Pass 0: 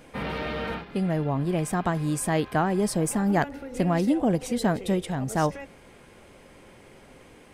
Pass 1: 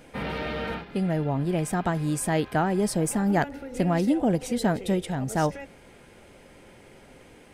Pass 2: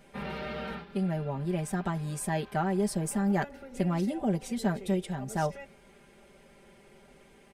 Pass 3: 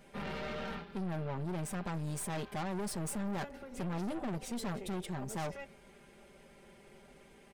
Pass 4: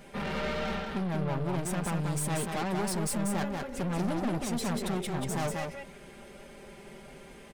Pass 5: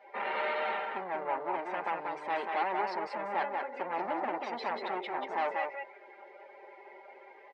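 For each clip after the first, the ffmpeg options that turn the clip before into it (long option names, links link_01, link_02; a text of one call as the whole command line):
ffmpeg -i in.wav -af "bandreject=frequency=1100:width=9.5" out.wav
ffmpeg -i in.wav -af "aecho=1:1:5.1:0.78,volume=-8dB" out.wav
ffmpeg -i in.wav -af "aeval=exprs='(tanh(63.1*val(0)+0.55)-tanh(0.55))/63.1':channel_layout=same,volume=1dB" out.wav
ffmpeg -i in.wav -af "asoftclip=type=tanh:threshold=-34.5dB,aecho=1:1:187:0.631,volume=8dB" out.wav
ffmpeg -i in.wav -af "highpass=frequency=370:width=0.5412,highpass=frequency=370:width=1.3066,equalizer=frequency=430:width_type=q:width=4:gain=-3,equalizer=frequency=880:width_type=q:width=4:gain=9,equalizer=frequency=2000:width_type=q:width=4:gain=5,equalizer=frequency=3400:width_type=q:width=4:gain=-4,lowpass=frequency=4200:width=0.5412,lowpass=frequency=4200:width=1.3066,afftdn=noise_reduction=13:noise_floor=-48" out.wav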